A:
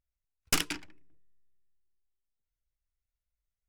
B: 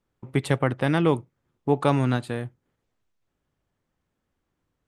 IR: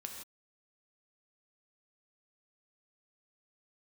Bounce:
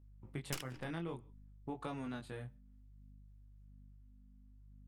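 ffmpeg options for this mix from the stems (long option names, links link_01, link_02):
-filter_complex "[0:a]tremolo=f=3.6:d=0.95,volume=-4dB,asplit=2[link_01][link_02];[link_02]volume=-23dB[link_03];[1:a]equalizer=frequency=440:width_type=o:width=2.1:gain=-2.5,aeval=exprs='val(0)+0.00562*(sin(2*PI*50*n/s)+sin(2*PI*2*50*n/s)/2+sin(2*PI*3*50*n/s)/3+sin(2*PI*4*50*n/s)/4+sin(2*PI*5*50*n/s)/5)':channel_layout=same,flanger=delay=17.5:depth=6.8:speed=0.58,volume=-11.5dB,asplit=2[link_04][link_05];[link_05]volume=-22.5dB[link_06];[2:a]atrim=start_sample=2205[link_07];[link_03][link_06]amix=inputs=2:normalize=0[link_08];[link_08][link_07]afir=irnorm=-1:irlink=0[link_09];[link_01][link_04][link_09]amix=inputs=3:normalize=0,acompressor=threshold=-39dB:ratio=4"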